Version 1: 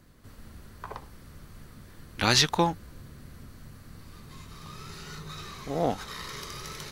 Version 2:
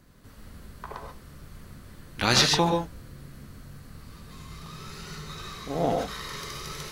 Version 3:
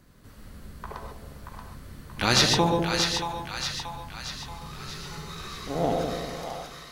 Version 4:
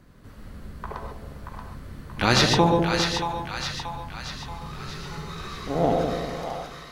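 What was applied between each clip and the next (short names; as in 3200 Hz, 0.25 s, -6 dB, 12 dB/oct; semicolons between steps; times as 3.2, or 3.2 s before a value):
non-linear reverb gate 0.16 s rising, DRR 2.5 dB
ending faded out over 1.08 s; split-band echo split 700 Hz, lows 0.201 s, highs 0.63 s, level -5 dB
high shelf 3800 Hz -9 dB; gain +4 dB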